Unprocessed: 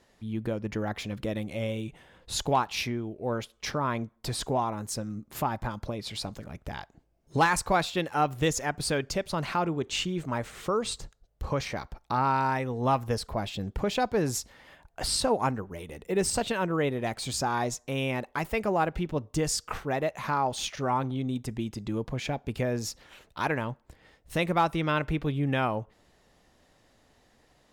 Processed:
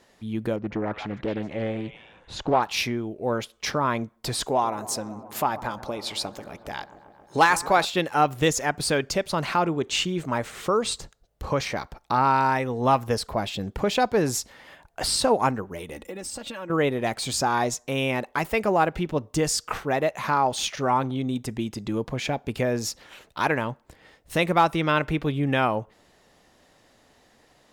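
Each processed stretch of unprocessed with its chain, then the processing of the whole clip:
0.56–2.62 s: tape spacing loss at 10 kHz 23 dB + repeats whose band climbs or falls 147 ms, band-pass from 1.1 kHz, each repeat 1.4 oct, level -2.5 dB + loudspeaker Doppler distortion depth 0.54 ms
4.46–7.85 s: tone controls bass -7 dB, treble +1 dB + feedback echo behind a low-pass 135 ms, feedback 78%, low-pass 1.2 kHz, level -15.5 dB
15.96–16.70 s: comb 3.6 ms, depth 77% + compression 8:1, threshold -37 dBFS
whole clip: de-esser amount 50%; bass shelf 120 Hz -8.5 dB; trim +5.5 dB

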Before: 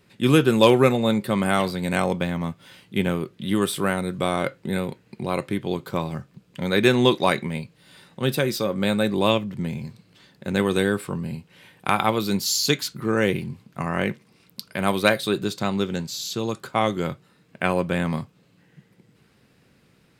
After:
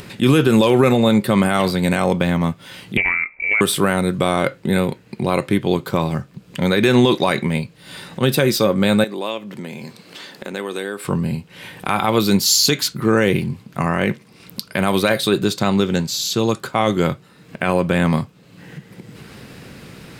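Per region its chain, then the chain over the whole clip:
2.97–3.61 s: compression 2:1, threshold -25 dBFS + frequency inversion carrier 2.5 kHz + loudspeaker Doppler distortion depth 0.21 ms
9.04–11.05 s: high-pass 310 Hz + compression 2:1, threshold -39 dBFS
whole clip: peak limiter -13 dBFS; upward compressor, threshold -35 dBFS; trim +8.5 dB

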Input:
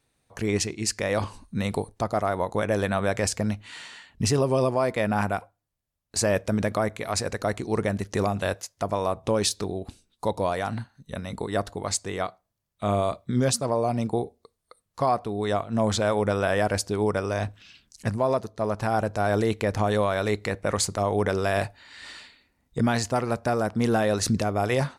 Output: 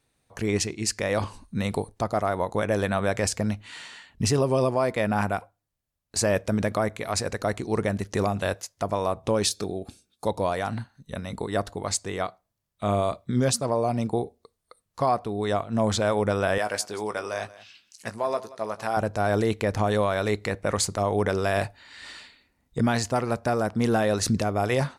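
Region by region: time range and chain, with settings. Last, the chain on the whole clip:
9.52–10.27 s: tone controls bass 0 dB, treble +4 dB + comb of notches 980 Hz
16.58–18.97 s: high-pass 700 Hz 6 dB/octave + doubling 18 ms -9.5 dB + delay 180 ms -18.5 dB
whole clip: none

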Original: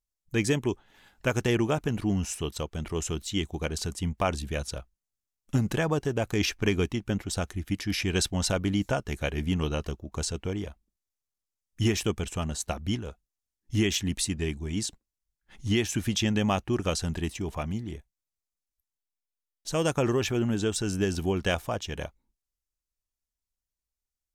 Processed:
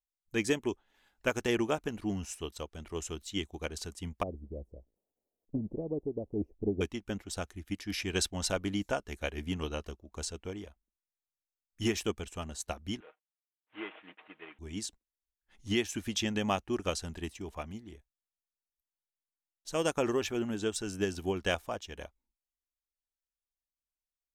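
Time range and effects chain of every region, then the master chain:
4.23–6.81 s: zero-crossing glitches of -25.5 dBFS + inverse Chebyshev low-pass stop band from 1.4 kHz, stop band 50 dB + loudspeaker Doppler distortion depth 0.21 ms
13.00–14.59 s: CVSD coder 16 kbps + high-pass 540 Hz + comb 6.4 ms, depth 51%
whole clip: peaking EQ 130 Hz -11 dB 0.81 oct; upward expansion 1.5:1, over -41 dBFS; trim -1.5 dB

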